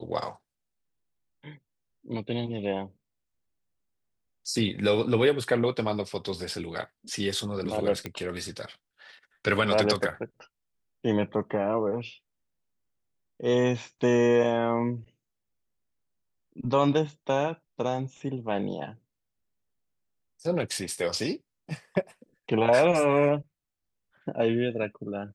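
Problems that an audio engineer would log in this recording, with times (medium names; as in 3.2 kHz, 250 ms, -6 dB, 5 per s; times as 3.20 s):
8.06 s: pop -18 dBFS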